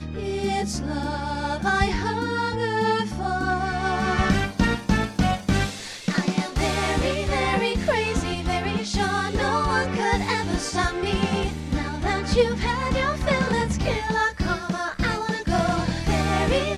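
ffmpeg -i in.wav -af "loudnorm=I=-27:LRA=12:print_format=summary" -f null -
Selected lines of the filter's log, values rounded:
Input Integrated:    -24.0 LUFS
Input True Peak:      -7.1 dBTP
Input LRA:             0.5 LU
Input Threshold:     -34.0 LUFS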